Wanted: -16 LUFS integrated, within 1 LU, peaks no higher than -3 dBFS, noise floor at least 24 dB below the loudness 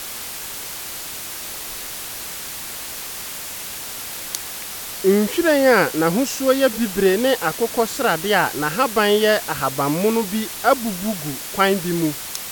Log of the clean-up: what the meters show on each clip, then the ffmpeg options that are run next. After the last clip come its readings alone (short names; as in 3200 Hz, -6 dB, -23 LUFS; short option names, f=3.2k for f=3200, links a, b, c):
noise floor -32 dBFS; noise floor target -45 dBFS; loudness -20.5 LUFS; peak -3.0 dBFS; loudness target -16.0 LUFS
-> -af "afftdn=nr=13:nf=-32"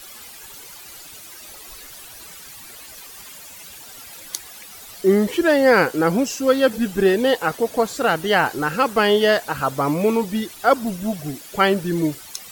noise floor -40 dBFS; noise floor target -44 dBFS
-> -af "afftdn=nr=6:nf=-40"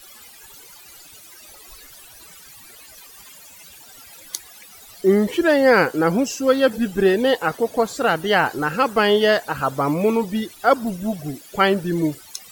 noise floor -45 dBFS; loudness -19.5 LUFS; peak -3.5 dBFS; loudness target -16.0 LUFS
-> -af "volume=3.5dB,alimiter=limit=-3dB:level=0:latency=1"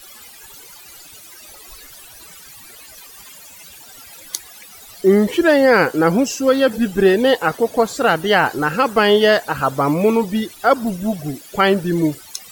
loudness -16.5 LUFS; peak -3.0 dBFS; noise floor -41 dBFS